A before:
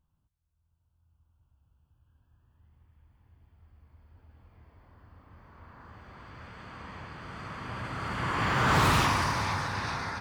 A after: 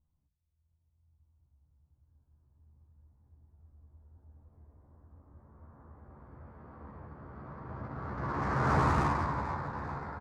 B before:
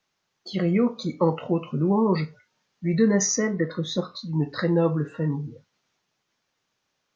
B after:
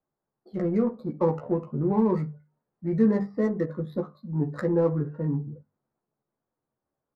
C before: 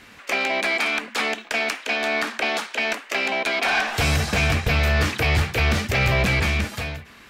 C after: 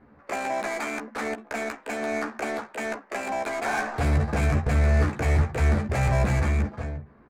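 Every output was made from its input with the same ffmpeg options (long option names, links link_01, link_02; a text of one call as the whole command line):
ffmpeg -i in.wav -filter_complex "[0:a]bandreject=frequency=50:width_type=h:width=6,bandreject=frequency=100:width_type=h:width=6,bandreject=frequency=150:width_type=h:width=6,bandreject=frequency=200:width_type=h:width=6,bandreject=frequency=250:width_type=h:width=6,aresample=11025,aresample=44100,adynamicsmooth=sensitivity=1.5:basefreq=1000,equalizer=frequency=3000:width=1.2:gain=-13.5,asplit=2[link_01][link_02];[link_02]adelay=14,volume=-5dB[link_03];[link_01][link_03]amix=inputs=2:normalize=0,volume=-2.5dB" out.wav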